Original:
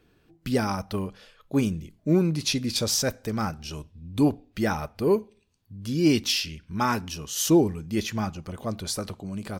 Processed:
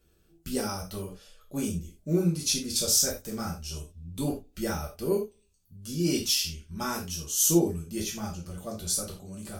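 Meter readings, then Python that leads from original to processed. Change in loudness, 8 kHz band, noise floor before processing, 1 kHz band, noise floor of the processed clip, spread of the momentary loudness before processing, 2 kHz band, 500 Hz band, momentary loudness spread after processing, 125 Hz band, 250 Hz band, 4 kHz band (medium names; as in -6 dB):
-2.5 dB, +4.5 dB, -64 dBFS, -8.0 dB, -65 dBFS, 13 LU, -7.5 dB, -4.5 dB, 16 LU, -4.5 dB, -5.5 dB, -1.5 dB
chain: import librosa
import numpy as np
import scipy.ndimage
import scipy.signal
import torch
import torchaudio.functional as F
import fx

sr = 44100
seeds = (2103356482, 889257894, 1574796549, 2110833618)

y = fx.graphic_eq(x, sr, hz=(125, 250, 500, 1000, 2000, 4000, 8000), db=(-11, -7, -6, -11, -11, -7, 3))
y = fx.rev_gated(y, sr, seeds[0], gate_ms=120, shape='falling', drr_db=-3.5)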